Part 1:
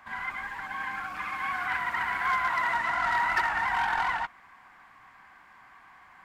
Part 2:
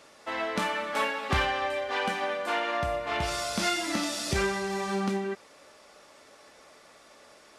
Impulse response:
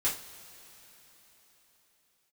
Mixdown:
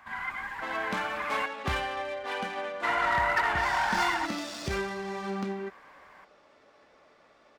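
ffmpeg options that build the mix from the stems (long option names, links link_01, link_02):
-filter_complex "[0:a]volume=-0.5dB,asplit=3[link_01][link_02][link_03];[link_01]atrim=end=1.46,asetpts=PTS-STARTPTS,afade=type=out:start_time=1.456:duration=0.004:curve=hsin[link_04];[link_02]atrim=start=1.46:end=2.83,asetpts=PTS-STARTPTS,volume=0[link_05];[link_03]atrim=start=2.83,asetpts=PTS-STARTPTS,afade=type=in:duration=0.004:curve=hsin[link_06];[link_04][link_05][link_06]concat=n=3:v=0:a=1[link_07];[1:a]adynamicsmooth=sensitivity=7:basefreq=3300,adelay=350,volume=-4dB[link_08];[link_07][link_08]amix=inputs=2:normalize=0"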